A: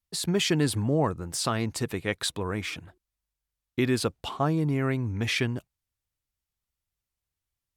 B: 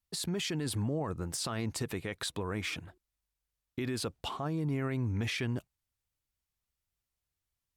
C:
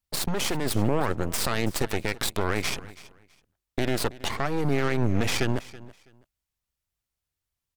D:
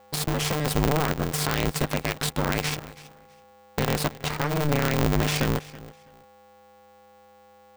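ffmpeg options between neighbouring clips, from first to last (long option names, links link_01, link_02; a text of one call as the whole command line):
ffmpeg -i in.wav -af "alimiter=level_in=1dB:limit=-24dB:level=0:latency=1:release=68,volume=-1dB,volume=-1dB" out.wav
ffmpeg -i in.wav -af "aeval=exprs='0.0531*(cos(1*acos(clip(val(0)/0.0531,-1,1)))-cos(1*PI/2))+0.0266*(cos(2*acos(clip(val(0)/0.0531,-1,1)))-cos(2*PI/2))+0.00944*(cos(3*acos(clip(val(0)/0.0531,-1,1)))-cos(3*PI/2))+0.00668*(cos(6*acos(clip(val(0)/0.0531,-1,1)))-cos(6*PI/2))':channel_layout=same,aecho=1:1:327|654:0.112|0.0247,volume=8dB" out.wav
ffmpeg -i in.wav -af "aeval=exprs='val(0)+0.00282*sin(2*PI*660*n/s)':channel_layout=same,aeval=exprs='val(0)*sgn(sin(2*PI*150*n/s))':channel_layout=same" out.wav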